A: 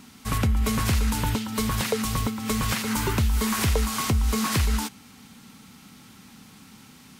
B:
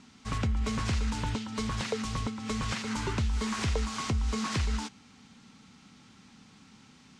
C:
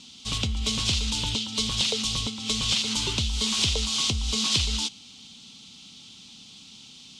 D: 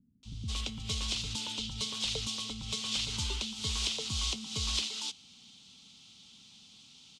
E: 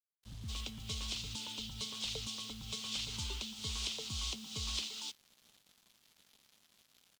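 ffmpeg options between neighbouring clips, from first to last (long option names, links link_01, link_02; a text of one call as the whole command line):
ffmpeg -i in.wav -af "lowpass=frequency=7300:width=0.5412,lowpass=frequency=7300:width=1.3066,volume=-6.5dB" out.wav
ffmpeg -i in.wav -af "highshelf=frequency=2400:width_type=q:width=3:gain=11" out.wav
ffmpeg -i in.wav -filter_complex "[0:a]acrossover=split=270[link_01][link_02];[link_02]adelay=230[link_03];[link_01][link_03]amix=inputs=2:normalize=0,volume=-8.5dB" out.wav
ffmpeg -i in.wav -af "acrusher=bits=7:mix=0:aa=0.5,volume=-6dB" out.wav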